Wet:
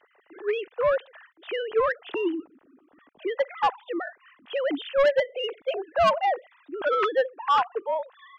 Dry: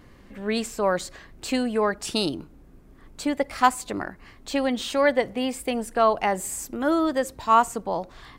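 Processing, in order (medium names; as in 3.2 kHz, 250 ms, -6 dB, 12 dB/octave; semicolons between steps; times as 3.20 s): formants replaced by sine waves; band-stop 2.2 kHz, Q 15; saturation -17 dBFS, distortion -11 dB; trim +1.5 dB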